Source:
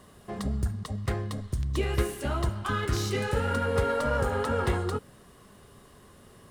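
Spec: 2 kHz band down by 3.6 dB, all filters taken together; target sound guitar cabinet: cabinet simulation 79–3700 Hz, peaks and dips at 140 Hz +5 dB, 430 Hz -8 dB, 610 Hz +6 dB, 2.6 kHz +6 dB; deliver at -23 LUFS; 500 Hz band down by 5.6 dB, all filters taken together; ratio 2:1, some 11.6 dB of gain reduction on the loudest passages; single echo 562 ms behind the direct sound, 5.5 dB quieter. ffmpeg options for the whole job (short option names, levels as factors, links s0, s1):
-af "equalizer=f=500:t=o:g=-5.5,equalizer=f=2000:t=o:g=-6,acompressor=threshold=0.00562:ratio=2,highpass=79,equalizer=f=140:t=q:w=4:g=5,equalizer=f=430:t=q:w=4:g=-8,equalizer=f=610:t=q:w=4:g=6,equalizer=f=2600:t=q:w=4:g=6,lowpass=f=3700:w=0.5412,lowpass=f=3700:w=1.3066,aecho=1:1:562:0.531,volume=8.41"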